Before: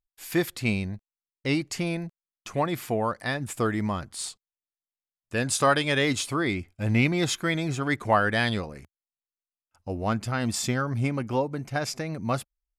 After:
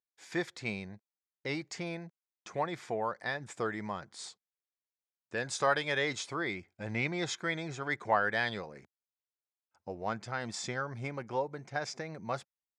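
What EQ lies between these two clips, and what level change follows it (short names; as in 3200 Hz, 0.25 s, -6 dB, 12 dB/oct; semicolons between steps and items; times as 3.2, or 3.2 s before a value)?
high shelf 4300 Hz -6 dB; dynamic EQ 270 Hz, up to -7 dB, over -39 dBFS, Q 1; speaker cabinet 210–7200 Hz, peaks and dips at 260 Hz -6 dB, 630 Hz -3 dB, 1200 Hz -5 dB, 2800 Hz -9 dB, 4400 Hz -3 dB; -2.5 dB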